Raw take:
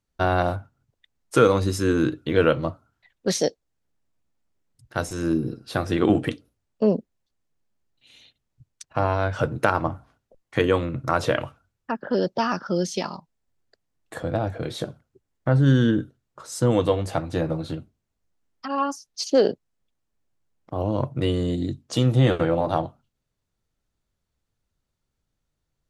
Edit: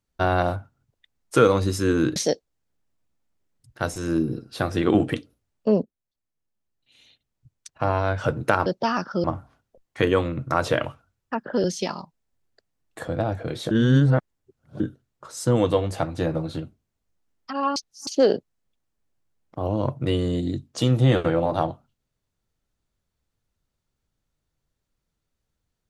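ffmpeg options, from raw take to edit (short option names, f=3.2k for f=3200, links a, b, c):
-filter_complex "[0:a]asplit=10[a][b][c][d][e][f][g][h][i][j];[a]atrim=end=2.162[k];[b]atrim=start=3.308:end=6.98,asetpts=PTS-STARTPTS,afade=t=out:st=3.668:d=0.004:c=hsin:silence=0.199526[l];[c]atrim=start=6.98:end=9.812,asetpts=PTS-STARTPTS,afade=t=in:d=2.17:silence=0.199526[m];[d]atrim=start=12.208:end=12.792[n];[e]atrim=start=9.808:end=12.212[o];[f]atrim=start=12.788:end=14.862[p];[g]atrim=start=14.858:end=15.952,asetpts=PTS-STARTPTS,areverse[q];[h]atrim=start=15.948:end=18.912[r];[i]atrim=start=18.908:end=19.222,asetpts=PTS-STARTPTS,areverse[s];[j]atrim=start=19.218[t];[l][m]concat=n=2:v=0:a=1[u];[k][u]acrossfade=d=0.004:c1=hsin:c2=hsin[v];[v][n]acrossfade=d=0.004:c1=hsin:c2=hsin[w];[w][o]acrossfade=d=0.004:c1=hsin:c2=hsin[x];[x][p]acrossfade=d=0.004:c1=hsin:c2=hsin[y];[y][q]acrossfade=d=0.004:c1=hsin:c2=hsin[z];[z][r]acrossfade=d=0.004:c1=hsin:c2=hsin[aa];[aa][s]acrossfade=d=0.004:c1=hsin:c2=hsin[ab];[ab][t]acrossfade=d=0.004:c1=hsin:c2=hsin"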